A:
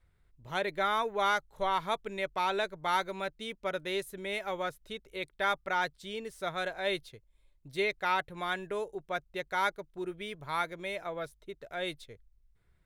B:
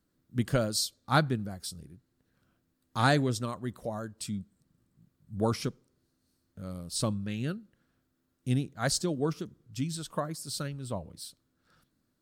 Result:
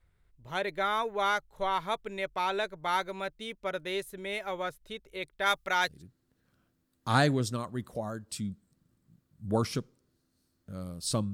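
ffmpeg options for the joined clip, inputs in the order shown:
ffmpeg -i cue0.wav -i cue1.wav -filter_complex "[0:a]asplit=3[link_01][link_02][link_03];[link_01]afade=type=out:start_time=5.45:duration=0.02[link_04];[link_02]highshelf=frequency=2500:gain=11.5,afade=type=in:start_time=5.45:duration=0.02,afade=type=out:start_time=6.03:duration=0.02[link_05];[link_03]afade=type=in:start_time=6.03:duration=0.02[link_06];[link_04][link_05][link_06]amix=inputs=3:normalize=0,apad=whole_dur=11.33,atrim=end=11.33,atrim=end=6.03,asetpts=PTS-STARTPTS[link_07];[1:a]atrim=start=1.74:end=7.22,asetpts=PTS-STARTPTS[link_08];[link_07][link_08]acrossfade=duration=0.18:curve1=tri:curve2=tri" out.wav

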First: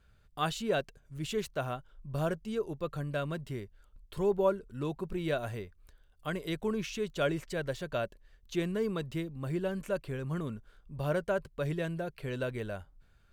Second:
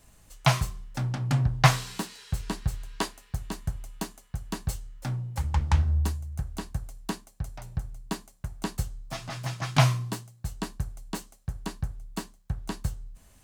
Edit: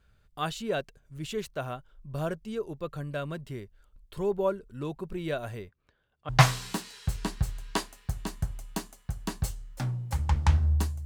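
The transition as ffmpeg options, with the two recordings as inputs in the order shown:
ffmpeg -i cue0.wav -i cue1.wav -filter_complex "[0:a]asettb=1/sr,asplit=3[link_01][link_02][link_03];[link_01]atrim=end=5.694[link_04];[link_02]atrim=start=5.69:end=6.29,asetpts=PTS-STARTPTS,afade=type=in:duration=0.004:curve=qsin,afade=type=out:start_time=0.596:duration=0.004:curve=qsin,highpass=110,lowpass=3300[link_05];[link_03]atrim=start=6.286[link_06];[link_04][link_05]acrossfade=duration=0.004:curve1=hsin:curve2=qsin[link_07];[link_07][link_06]acrossfade=duration=0.004:curve1=qsin:curve2=hsin,apad=whole_dur=11.05,atrim=end=11.05,atrim=end=6.292[link_08];[1:a]atrim=start=1.538:end=6.3[link_09];[link_08][link_09]acrossfade=duration=0.004:curve1=hsin:curve2=hsin" out.wav

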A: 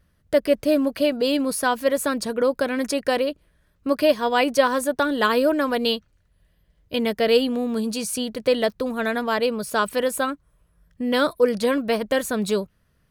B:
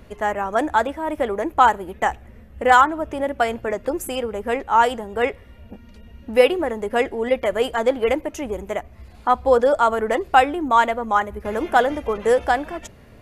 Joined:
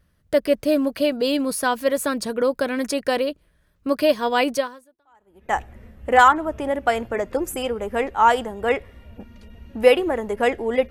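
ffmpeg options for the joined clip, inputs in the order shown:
ffmpeg -i cue0.wav -i cue1.wav -filter_complex "[0:a]apad=whole_dur=10.9,atrim=end=10.9,atrim=end=5.55,asetpts=PTS-STARTPTS[link_01];[1:a]atrim=start=1.08:end=7.43,asetpts=PTS-STARTPTS[link_02];[link_01][link_02]acrossfade=duration=1:curve1=exp:curve2=exp" out.wav

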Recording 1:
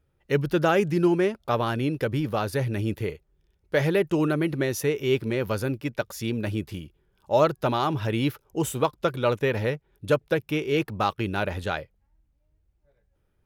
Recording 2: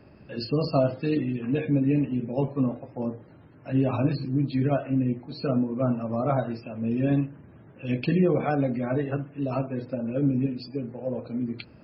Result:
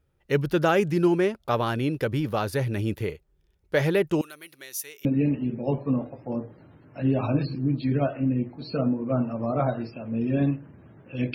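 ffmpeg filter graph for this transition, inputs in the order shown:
ffmpeg -i cue0.wav -i cue1.wav -filter_complex "[0:a]asettb=1/sr,asplit=3[link_01][link_02][link_03];[link_01]atrim=end=4.214[link_04];[link_02]atrim=start=4.21:end=5.05,asetpts=PTS-STARTPTS,afade=type=in:duration=0.004:curve=qsin,afade=type=out:start_time=0.836:duration=0.004:curve=qsin,aderivative[link_05];[link_03]atrim=start=5.046[link_06];[link_04][link_05]acrossfade=duration=0.004:curve1=hsin:curve2=qsin[link_07];[link_07][link_06]acrossfade=duration=0.004:curve1=qsin:curve2=hsin,apad=whole_dur=11.34,atrim=end=11.34,atrim=end=5.052[link_08];[1:a]atrim=start=1.748:end=8.04[link_09];[link_08][link_09]acrossfade=duration=0.004:curve1=hsin:curve2=hsin" out.wav

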